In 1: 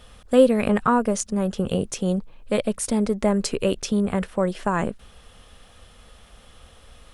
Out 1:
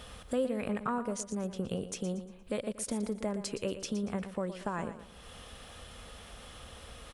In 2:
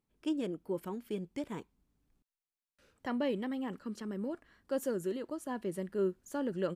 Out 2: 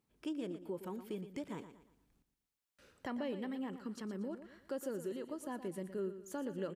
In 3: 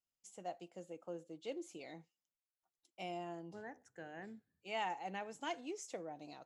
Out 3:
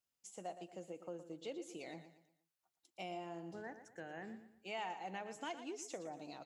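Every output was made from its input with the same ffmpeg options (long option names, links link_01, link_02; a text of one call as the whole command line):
ffmpeg -i in.wav -filter_complex "[0:a]highpass=frequency=54:poles=1,acompressor=threshold=-48dB:ratio=2,asplit=2[link_01][link_02];[link_02]aecho=0:1:117|234|351|468:0.266|0.101|0.0384|0.0146[link_03];[link_01][link_03]amix=inputs=2:normalize=0,volume=3dB" out.wav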